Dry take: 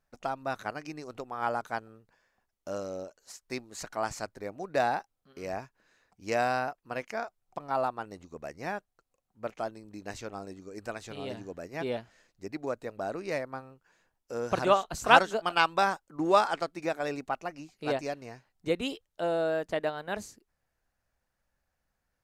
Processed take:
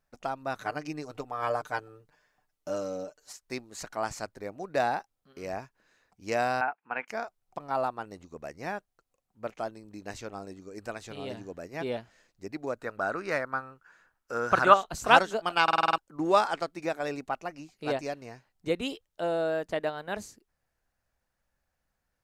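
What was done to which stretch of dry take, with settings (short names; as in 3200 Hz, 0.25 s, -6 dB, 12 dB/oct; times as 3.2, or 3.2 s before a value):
0.61–3.33 comb 6.7 ms, depth 77%
6.61–7.08 speaker cabinet 260–2700 Hz, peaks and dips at 350 Hz -7 dB, 570 Hz -9 dB, 840 Hz +10 dB, 1500 Hz +8 dB, 2400 Hz +8 dB
12.79–14.74 bell 1400 Hz +14 dB 0.79 oct
15.63 stutter in place 0.05 s, 7 plays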